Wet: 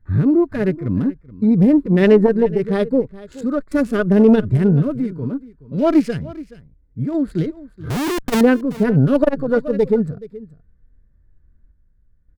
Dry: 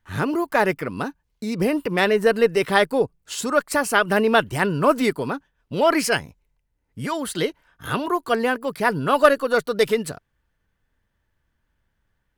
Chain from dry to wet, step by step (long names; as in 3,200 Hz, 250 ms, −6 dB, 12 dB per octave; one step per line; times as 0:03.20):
adaptive Wiener filter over 15 samples
spectral tilt −2.5 dB per octave
harmonic and percussive parts rebalanced percussive −15 dB
parametric band 860 Hz −13.5 dB 0.96 octaves
0:04.82–0:05.78: downward compressor 4 to 1, threshold −29 dBFS, peak gain reduction 12 dB
0:07.90–0:08.41: comparator with hysteresis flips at −37.5 dBFS
sample-and-hold tremolo
single-tap delay 425 ms −19 dB
boost into a limiter +10.5 dB
saturating transformer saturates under 190 Hz